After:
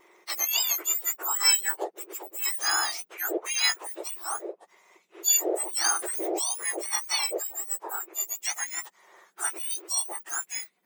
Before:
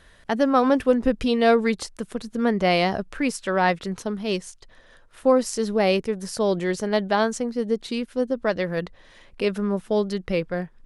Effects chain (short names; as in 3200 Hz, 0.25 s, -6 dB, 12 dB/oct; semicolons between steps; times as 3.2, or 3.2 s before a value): spectrum mirrored in octaves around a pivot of 1900 Hz; wow and flutter 24 cents; 5.84–6.55 backwards sustainer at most 20 dB/s; gain -1 dB